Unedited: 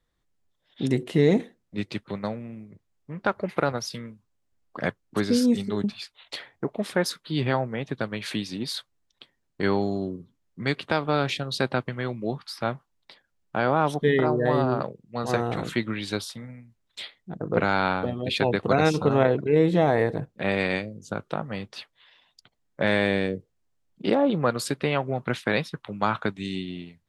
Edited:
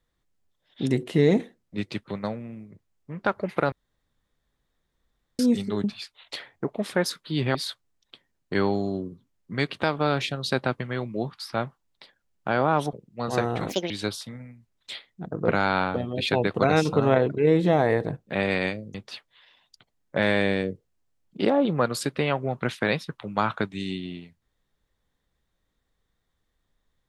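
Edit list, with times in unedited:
3.72–5.39 s: room tone
7.55–8.63 s: delete
14.01–14.89 s: delete
15.65–15.99 s: speed 160%
21.03–21.59 s: delete

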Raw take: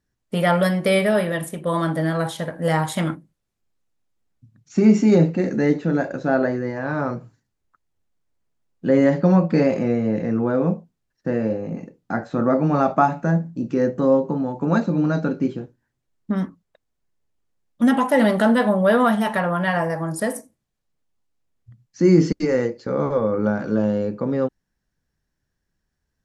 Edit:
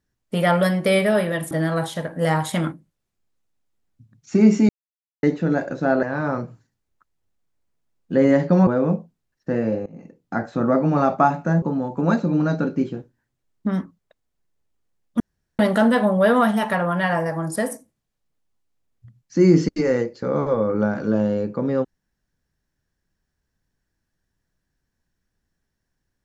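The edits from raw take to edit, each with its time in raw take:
1.51–1.94 s: delete
5.12–5.66 s: mute
6.46–6.76 s: delete
9.40–10.45 s: delete
11.64–12.14 s: fade in, from -20 dB
13.40–14.26 s: delete
17.84–18.23 s: room tone

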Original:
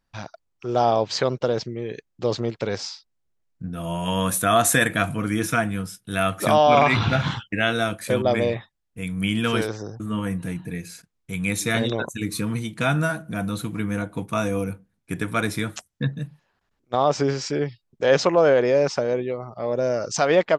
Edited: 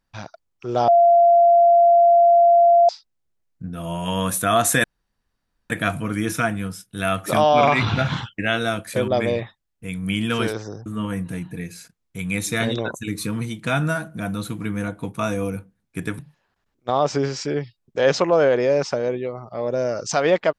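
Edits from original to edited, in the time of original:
0.88–2.89 s: bleep 688 Hz -10 dBFS
4.84 s: insert room tone 0.86 s
15.33–16.24 s: delete

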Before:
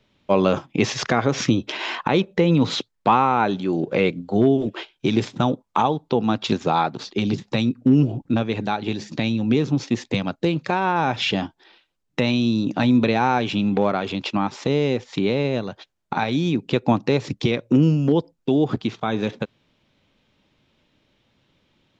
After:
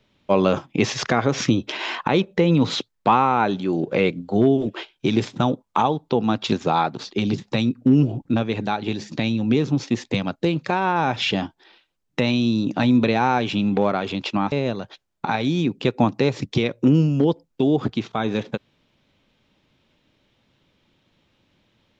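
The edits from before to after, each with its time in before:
14.52–15.40 s: delete

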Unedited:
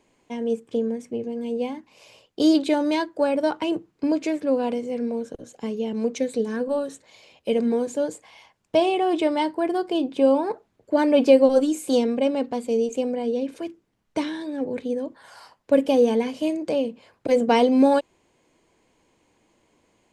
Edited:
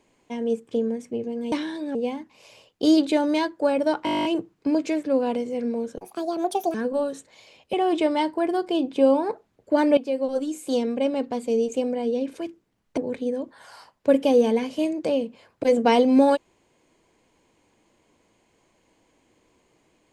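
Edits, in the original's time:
3.62 s: stutter 0.02 s, 11 plays
5.37–6.50 s: speed 152%
7.49–8.94 s: delete
11.18–13.05 s: fade in equal-power, from -16.5 dB
14.18–14.61 s: move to 1.52 s

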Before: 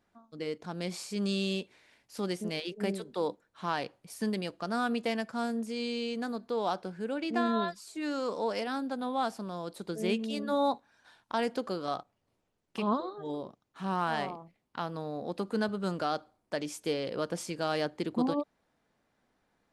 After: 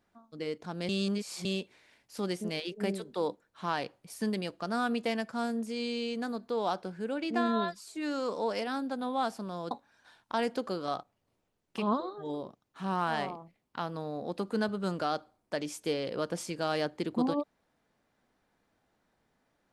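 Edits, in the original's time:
0.89–1.45 s: reverse
9.71–10.71 s: delete

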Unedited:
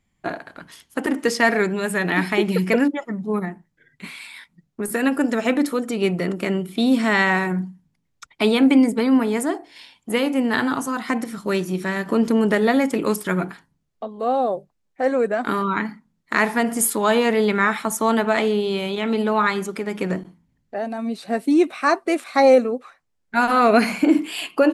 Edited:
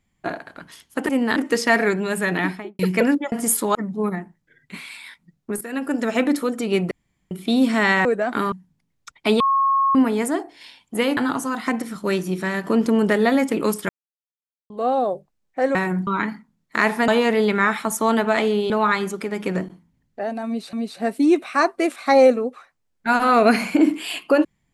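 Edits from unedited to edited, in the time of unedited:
2.05–2.52 s: studio fade out
4.91–5.42 s: fade in, from -14 dB
6.21–6.61 s: room tone
7.35–7.67 s: swap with 15.17–15.64 s
8.55–9.10 s: bleep 1.09 kHz -15 dBFS
10.32–10.59 s: move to 1.09 s
13.31–14.12 s: mute
16.65–17.08 s: move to 3.05 s
18.70–19.25 s: delete
21.01–21.28 s: loop, 2 plays

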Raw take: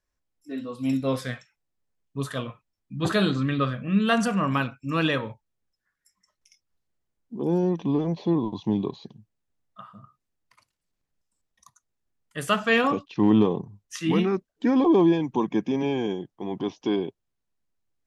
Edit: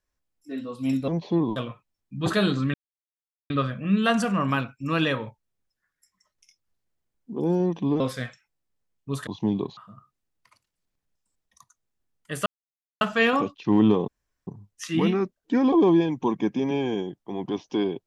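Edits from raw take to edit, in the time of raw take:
1.08–2.35 s: swap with 8.03–8.51 s
3.53 s: insert silence 0.76 s
9.01–9.83 s: delete
12.52 s: insert silence 0.55 s
13.59 s: insert room tone 0.39 s

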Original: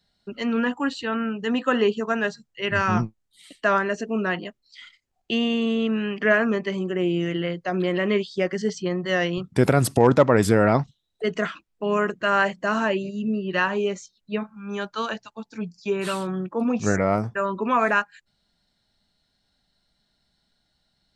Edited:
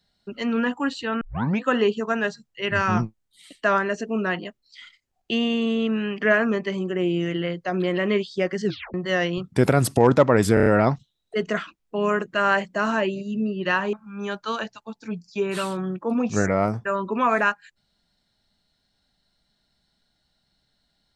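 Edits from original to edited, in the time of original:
1.21 s: tape start 0.41 s
8.65 s: tape stop 0.29 s
10.54 s: stutter 0.03 s, 5 plays
13.81–14.43 s: delete

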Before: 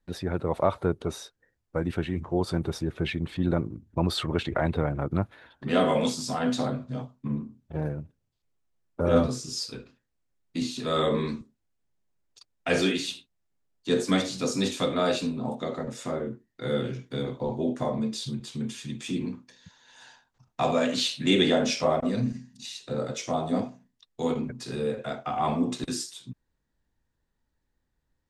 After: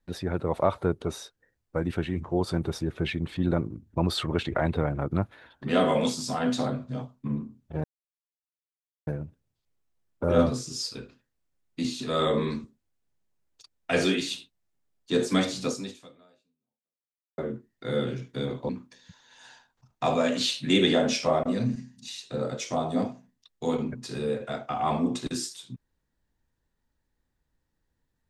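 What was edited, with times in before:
7.84 s: insert silence 1.23 s
14.44–16.15 s: fade out exponential
17.46–19.26 s: delete

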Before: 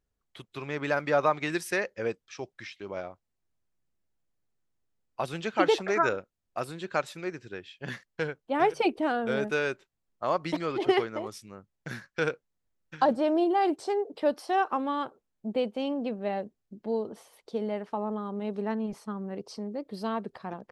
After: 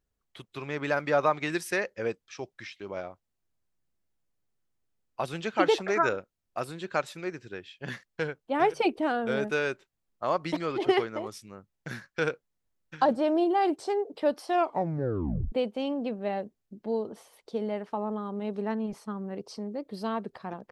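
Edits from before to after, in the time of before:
14.49 s: tape stop 1.03 s

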